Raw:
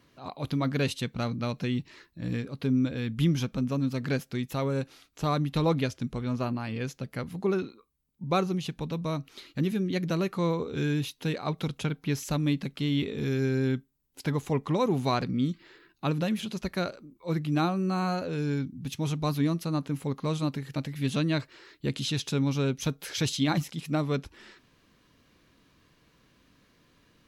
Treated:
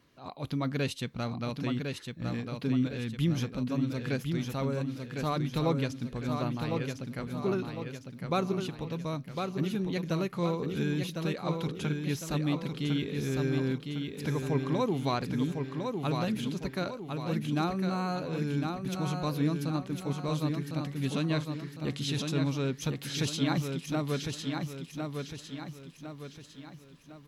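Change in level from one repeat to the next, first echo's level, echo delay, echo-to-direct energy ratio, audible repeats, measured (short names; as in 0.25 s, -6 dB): -7.0 dB, -5.0 dB, 1.055 s, -4.0 dB, 5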